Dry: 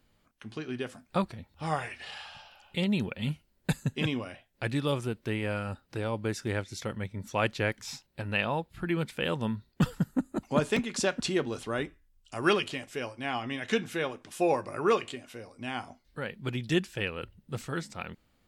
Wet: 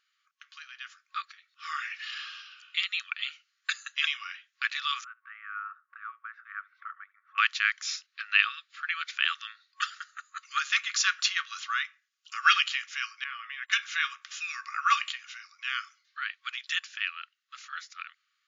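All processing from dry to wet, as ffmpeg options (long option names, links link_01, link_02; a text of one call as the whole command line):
ffmpeg -i in.wav -filter_complex "[0:a]asettb=1/sr,asplit=3[link_01][link_02][link_03];[link_01]atrim=end=5.044[link_04];[link_02]atrim=start=5.04:end=7.38,asetpts=PTS-STARTPTS,afade=type=in:duration=0.004:curve=qsin,afade=type=out:start_time=2.336:duration=0.004:curve=qsin,lowpass=frequency=1300:width=0.5412,lowpass=frequency=1300:width=1.3066,aecho=1:1:71:0.0668,atrim=end_sample=103194[link_05];[link_03]atrim=start=7.376[link_06];[link_04][link_05]acrossfade=duration=0.004:curve1=hsin:curve2=qsin[link_07];[link_07][link_06]acrossfade=duration=0.004:curve1=qsin:curve2=hsin,asettb=1/sr,asplit=3[link_08][link_09][link_10];[link_08]atrim=end=13.244[link_11];[link_09]atrim=start=13.24:end=13.72,asetpts=PTS-STARTPTS,afade=type=in:duration=0.004:curve=qsin,afade=type=out:start_time=0.476:duration=0.004:curve=qsin,acompressor=threshold=-36dB:ratio=4:attack=3.2:release=140:knee=1:detection=peak,agate=range=-30dB:threshold=-43dB:ratio=16:release=100:detection=peak,lowpass=2400[link_12];[link_10]atrim=start=13.716[link_13];[link_11][link_12]acrossfade=duration=0.004:curve1=hsin:curve2=qsin[link_14];[link_14][link_13]acrossfade=duration=0.004:curve1=qsin:curve2=hsin,afftfilt=real='re*between(b*sr/4096,1100,7200)':imag='im*between(b*sr/4096,1100,7200)':win_size=4096:overlap=0.75,dynaudnorm=framelen=200:gausssize=21:maxgain=8dB" out.wav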